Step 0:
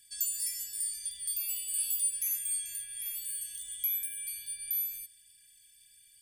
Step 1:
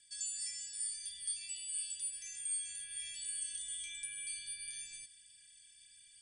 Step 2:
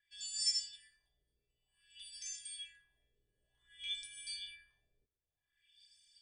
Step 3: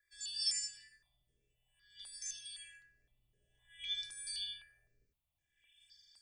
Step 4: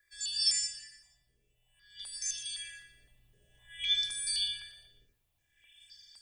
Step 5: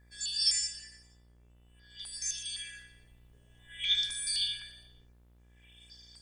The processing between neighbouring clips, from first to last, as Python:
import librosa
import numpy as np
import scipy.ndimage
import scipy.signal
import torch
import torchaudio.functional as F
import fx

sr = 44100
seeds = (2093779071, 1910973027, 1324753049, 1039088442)

y1 = scipy.signal.sosfilt(scipy.signal.butter(16, 9000.0, 'lowpass', fs=sr, output='sos'), x)
y1 = fx.low_shelf(y1, sr, hz=190.0, db=-4.5)
y1 = fx.rider(y1, sr, range_db=3, speed_s=0.5)
y1 = F.gain(torch.from_numpy(y1), -1.0).numpy()
y2 = y1 + 0.36 * np.pad(y1, (int(2.8 * sr / 1000.0), 0))[:len(y1)]
y2 = fx.filter_lfo_lowpass(y2, sr, shape='sine', hz=0.54, low_hz=440.0, high_hz=5800.0, q=3.4)
y2 = fx.upward_expand(y2, sr, threshold_db=-59.0, expansion=1.5)
y2 = F.gain(torch.from_numpy(y2), 3.5).numpy()
y3 = y2 + 10.0 ** (-5.5 / 20.0) * np.pad(y2, (int(75 * sr / 1000.0), 0))[:len(y2)]
y3 = fx.phaser_held(y3, sr, hz=3.9, low_hz=800.0, high_hz=4300.0)
y3 = F.gain(torch.from_numpy(y3), 4.5).numpy()
y4 = fx.rider(y3, sr, range_db=4, speed_s=2.0)
y4 = fx.echo_feedback(y4, sr, ms=118, feedback_pct=46, wet_db=-13.5)
y4 = F.gain(torch.from_numpy(y4), 8.0).numpy()
y5 = fx.dmg_buzz(y4, sr, base_hz=60.0, harmonics=39, level_db=-62.0, tilt_db=-8, odd_only=False)
y5 = fx.doppler_dist(y5, sr, depth_ms=0.11)
y5 = F.gain(torch.from_numpy(y5), 1.0).numpy()